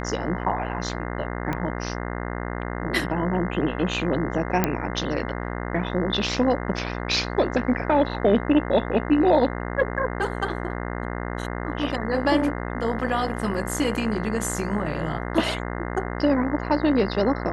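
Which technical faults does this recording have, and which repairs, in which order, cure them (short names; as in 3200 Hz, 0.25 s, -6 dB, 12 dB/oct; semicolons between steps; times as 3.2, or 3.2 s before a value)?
buzz 60 Hz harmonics 35 -30 dBFS
1.53 pop -14 dBFS
4.64 pop -5 dBFS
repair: de-click; de-hum 60 Hz, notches 35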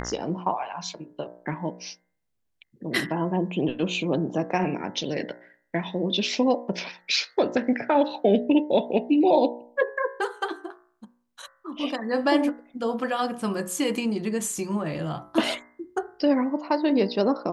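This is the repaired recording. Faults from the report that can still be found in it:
1.53 pop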